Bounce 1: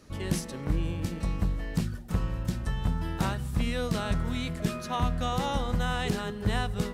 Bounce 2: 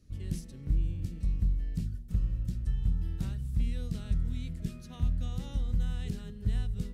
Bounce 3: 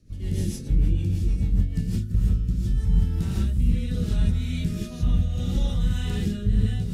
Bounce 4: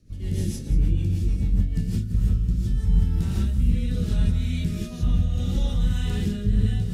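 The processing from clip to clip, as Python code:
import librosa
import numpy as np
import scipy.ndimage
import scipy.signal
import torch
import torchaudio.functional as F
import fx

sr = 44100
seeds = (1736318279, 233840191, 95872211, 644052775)

y1 = fx.tone_stack(x, sr, knobs='10-0-1')
y1 = F.gain(torch.from_numpy(y1), 8.0).numpy()
y2 = fx.rev_gated(y1, sr, seeds[0], gate_ms=190, shape='rising', drr_db=-7.0)
y2 = fx.rotary_switch(y2, sr, hz=6.7, then_hz=0.7, switch_at_s=1.6)
y2 = F.gain(torch.from_numpy(y2), 5.5).numpy()
y3 = y2 + 10.0 ** (-13.5 / 20.0) * np.pad(y2, (int(181 * sr / 1000.0), 0))[:len(y2)]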